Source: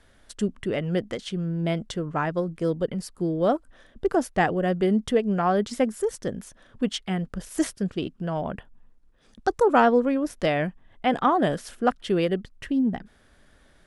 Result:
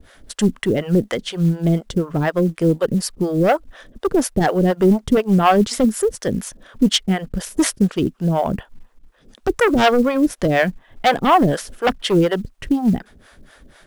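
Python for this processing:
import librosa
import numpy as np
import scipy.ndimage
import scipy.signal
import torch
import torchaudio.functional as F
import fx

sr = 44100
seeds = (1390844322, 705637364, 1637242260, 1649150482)

p1 = fx.fold_sine(x, sr, drive_db=10, ceiling_db=-7.5)
p2 = x + F.gain(torch.from_numpy(p1), -3.5).numpy()
p3 = fx.harmonic_tremolo(p2, sr, hz=4.1, depth_pct=100, crossover_hz=460.0)
p4 = fx.quant_float(p3, sr, bits=4)
y = F.gain(torch.from_numpy(p4), 2.0).numpy()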